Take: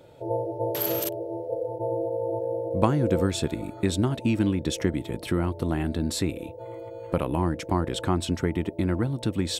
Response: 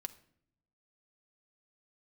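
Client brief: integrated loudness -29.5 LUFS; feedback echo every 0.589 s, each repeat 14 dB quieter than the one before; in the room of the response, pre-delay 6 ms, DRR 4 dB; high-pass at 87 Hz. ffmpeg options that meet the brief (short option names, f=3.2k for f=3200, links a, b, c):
-filter_complex "[0:a]highpass=87,aecho=1:1:589|1178:0.2|0.0399,asplit=2[a][b];[1:a]atrim=start_sample=2205,adelay=6[c];[b][c]afir=irnorm=-1:irlink=0,volume=-1dB[d];[a][d]amix=inputs=2:normalize=0,volume=-4dB"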